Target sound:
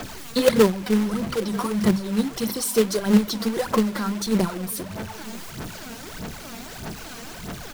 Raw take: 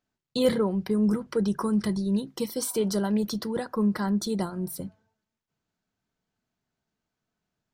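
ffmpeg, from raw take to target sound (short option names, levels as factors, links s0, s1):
-filter_complex "[0:a]aeval=exprs='val(0)+0.5*0.0224*sgn(val(0))':c=same,bandreject=f=50:t=h:w=6,bandreject=f=100:t=h:w=6,bandreject=f=150:t=h:w=6,bandreject=f=200:t=h:w=6,bandreject=f=250:t=h:w=6,aphaser=in_gain=1:out_gain=1:delay=4.4:decay=0.68:speed=1.6:type=sinusoidal,aecho=1:1:946:0.0708,acrossover=split=200|1400[s0][s1][s2];[s1]acrusher=bits=2:mode=log:mix=0:aa=0.000001[s3];[s0][s3][s2]amix=inputs=3:normalize=0"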